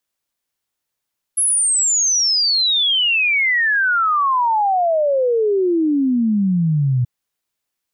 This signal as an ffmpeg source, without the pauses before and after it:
ffmpeg -f lavfi -i "aevalsrc='0.211*clip(min(t,5.68-t)/0.01,0,1)*sin(2*PI*11000*5.68/log(120/11000)*(exp(log(120/11000)*t/5.68)-1))':duration=5.68:sample_rate=44100" out.wav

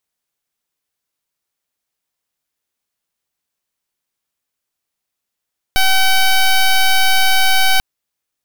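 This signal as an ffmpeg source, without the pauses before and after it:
ffmpeg -f lavfi -i "aevalsrc='0.282*(2*lt(mod(763*t,1),0.1)-1)':duration=2.04:sample_rate=44100" out.wav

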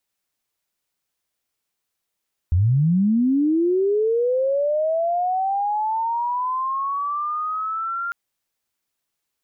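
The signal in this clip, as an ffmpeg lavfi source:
ffmpeg -f lavfi -i "aevalsrc='pow(10,(-14-9.5*t/5.6)/20)*sin(2*PI*(79*t+1321*t*t/(2*5.6)))':duration=5.6:sample_rate=44100" out.wav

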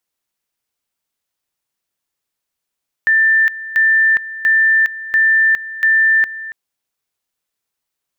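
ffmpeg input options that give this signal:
ffmpeg -f lavfi -i "aevalsrc='pow(10,(-9-16*gte(mod(t,0.69),0.41))/20)*sin(2*PI*1780*t)':duration=3.45:sample_rate=44100" out.wav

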